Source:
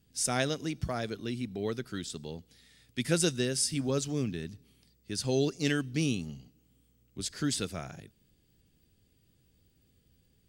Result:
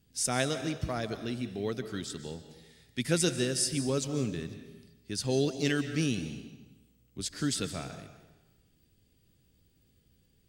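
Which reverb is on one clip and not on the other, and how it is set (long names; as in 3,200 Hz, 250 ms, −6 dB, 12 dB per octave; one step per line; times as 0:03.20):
comb and all-pass reverb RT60 1.1 s, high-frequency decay 0.9×, pre-delay 105 ms, DRR 10 dB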